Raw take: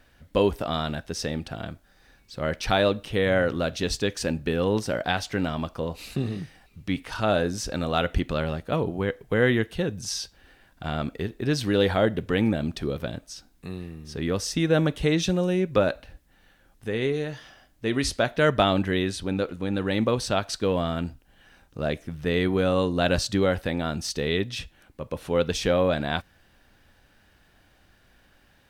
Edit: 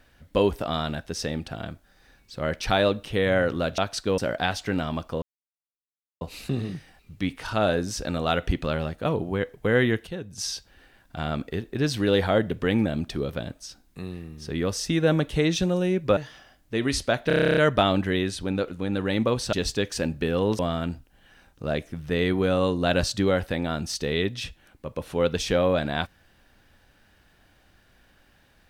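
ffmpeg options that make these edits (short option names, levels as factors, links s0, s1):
-filter_complex "[0:a]asplit=19[s0][s1][s2][s3][s4][s5][s6][s7][s8][s9][s10][s11][s12][s13][s14][s15][s16][s17][s18];[s0]atrim=end=3.782[s19];[s1]atrim=start=20.338:end=20.742[s20];[s2]atrim=start=4.838:end=5.88,asetpts=PTS-STARTPTS,afade=t=out:st=1.038:d=0.004:c=hsin,apad=pad_dur=0.99[s21];[s3]atrim=start=5.88:end=9.742,asetpts=PTS-STARTPTS,afade=t=in:d=0.004:c=hsin[s22];[s4]atrim=start=9.738:end=10.052,asetpts=PTS-STARTPTS,volume=0.422[s23];[s5]atrim=start=10.048:end=15.842[s24];[s6]atrim=start=17.278:end=18.412[s25];[s7]atrim=start=18.378:end=18.412[s26];[s8]atrim=start=18.378:end=18.412[s27];[s9]atrim=start=18.378:end=18.412[s28];[s10]atrim=start=18.378:end=18.412[s29];[s11]atrim=start=18.378:end=18.412[s30];[s12]atrim=start=18.378:end=18.412[s31];[s13]atrim=start=18.378:end=18.412[s32];[s14]atrim=start=18.378:end=18.412[s33];[s15]atrim=start=18.378:end=18.412[s34];[s16]atrim=start=18.378:end=20.342[s35];[s17]atrim=start=3.778:end=4.842[s36];[s18]atrim=start=20.738[s37];[s19][s20]acrossfade=d=0.004:c1=hsin:c2=hsin[s38];[s21][s22]concat=n=2:v=0:a=1[s39];[s38][s39]acrossfade=d=0.004:c1=hsin:c2=hsin[s40];[s40][s23]acrossfade=d=0.004:c1=hsin:c2=hsin[s41];[s41][s24]acrossfade=d=0.004:c1=hsin:c2=hsin[s42];[s42][s25]acrossfade=d=0.004:c1=hsin:c2=hsin[s43];[s43][s26]acrossfade=d=0.004:c1=hsin:c2=hsin[s44];[s44][s27]acrossfade=d=0.004:c1=hsin:c2=hsin[s45];[s45][s28]acrossfade=d=0.004:c1=hsin:c2=hsin[s46];[s46][s29]acrossfade=d=0.004:c1=hsin:c2=hsin[s47];[s47][s30]acrossfade=d=0.004:c1=hsin:c2=hsin[s48];[s48][s31]acrossfade=d=0.004:c1=hsin:c2=hsin[s49];[s49][s32]acrossfade=d=0.004:c1=hsin:c2=hsin[s50];[s50][s33]acrossfade=d=0.004:c1=hsin:c2=hsin[s51];[s51][s34]acrossfade=d=0.004:c1=hsin:c2=hsin[s52];[s52][s35]acrossfade=d=0.004:c1=hsin:c2=hsin[s53];[s53][s36]acrossfade=d=0.004:c1=hsin:c2=hsin[s54];[s54][s37]acrossfade=d=0.004:c1=hsin:c2=hsin"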